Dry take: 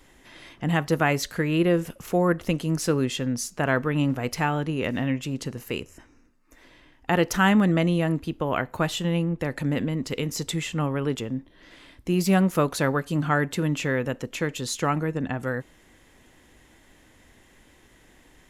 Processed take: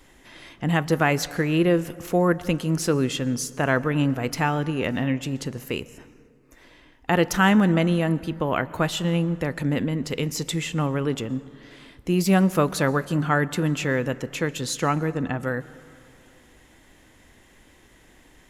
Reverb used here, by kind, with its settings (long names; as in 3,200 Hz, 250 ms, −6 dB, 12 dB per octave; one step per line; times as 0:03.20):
dense smooth reverb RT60 2.5 s, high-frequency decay 0.4×, pre-delay 105 ms, DRR 18.5 dB
level +1.5 dB